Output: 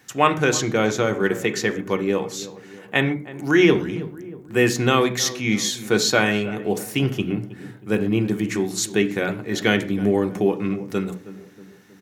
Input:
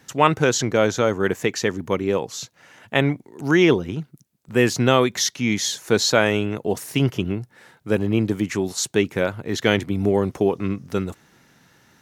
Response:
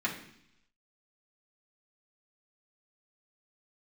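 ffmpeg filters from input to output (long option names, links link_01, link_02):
-filter_complex "[0:a]highshelf=frequency=12000:gain=5,asplit=2[link_01][link_02];[link_02]adelay=318,lowpass=frequency=1100:poles=1,volume=-15dB,asplit=2[link_03][link_04];[link_04]adelay=318,lowpass=frequency=1100:poles=1,volume=0.53,asplit=2[link_05][link_06];[link_06]adelay=318,lowpass=frequency=1100:poles=1,volume=0.53,asplit=2[link_07][link_08];[link_08]adelay=318,lowpass=frequency=1100:poles=1,volume=0.53,asplit=2[link_09][link_10];[link_10]adelay=318,lowpass=frequency=1100:poles=1,volume=0.53[link_11];[link_01][link_03][link_05][link_07][link_09][link_11]amix=inputs=6:normalize=0,asplit=2[link_12][link_13];[1:a]atrim=start_sample=2205,atrim=end_sample=6174[link_14];[link_13][link_14]afir=irnorm=-1:irlink=0,volume=-9dB[link_15];[link_12][link_15]amix=inputs=2:normalize=0,volume=-3dB"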